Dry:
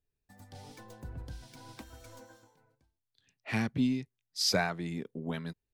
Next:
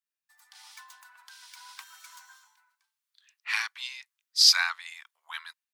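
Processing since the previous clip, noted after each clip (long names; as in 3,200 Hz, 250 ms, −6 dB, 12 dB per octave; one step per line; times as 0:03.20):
Butterworth high-pass 1,000 Hz 48 dB per octave
dynamic equaliser 4,300 Hz, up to +6 dB, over −50 dBFS, Q 1.5
automatic gain control gain up to 9 dB
level −1.5 dB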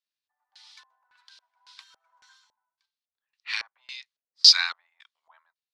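high-shelf EQ 5,600 Hz +11.5 dB
auto-filter low-pass square 1.8 Hz 600–4,100 Hz
sample-and-hold tremolo
level −3.5 dB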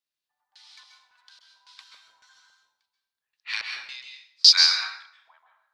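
dense smooth reverb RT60 0.68 s, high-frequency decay 0.8×, pre-delay 120 ms, DRR 2.5 dB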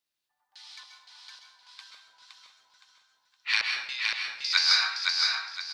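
sample-and-hold tremolo, depth 55%
compressor whose output falls as the input rises −24 dBFS, ratio −1
repeating echo 516 ms, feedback 34%, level −3.5 dB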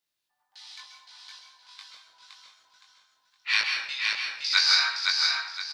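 double-tracking delay 20 ms −2.5 dB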